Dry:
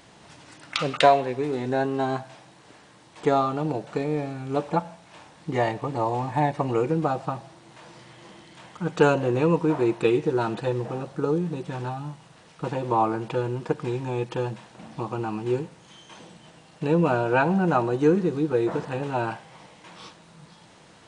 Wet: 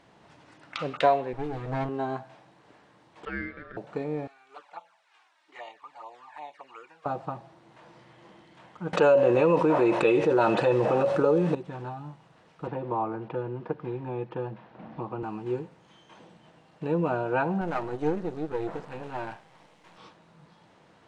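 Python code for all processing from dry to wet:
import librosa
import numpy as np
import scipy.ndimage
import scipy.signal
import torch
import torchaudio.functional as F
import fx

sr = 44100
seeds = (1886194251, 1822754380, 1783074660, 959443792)

y = fx.chain(x, sr, fx.lower_of_two(delay_ms=6.4),
    fx.low_shelf(hz=64.0, db=10.5), at=(1.33, 1.89))
y = fx.chain(y, sr, fx.bandpass_edges(low_hz=710.0, high_hz=3100.0),
    fx.ring_mod(carrier_hz=890.0), at=(3.25, 3.77))
y = fx.chain(y, sr, fx.highpass(hz=1300.0, slope=12),
    fx.env_flanger(rest_ms=3.9, full_db=-30.0), at=(4.27, 7.06))
y = fx.chain(y, sr, fx.low_shelf(hz=290.0, db=-9.5),
    fx.small_body(hz=(560.0, 2600.0), ring_ms=90, db=14),
    fx.env_flatten(amount_pct=70), at=(8.93, 11.55))
y = fx.chain(y, sr, fx.highpass(hz=45.0, slope=12),
    fx.air_absorb(metres=230.0),
    fx.band_squash(depth_pct=40), at=(12.67, 15.23))
y = fx.chain(y, sr, fx.halfwave_gain(db=-12.0),
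    fx.high_shelf(hz=4200.0, db=8.0), at=(17.61, 19.98))
y = fx.lowpass(y, sr, hz=1700.0, slope=6)
y = fx.low_shelf(y, sr, hz=230.0, db=-4.5)
y = y * librosa.db_to_amplitude(-3.5)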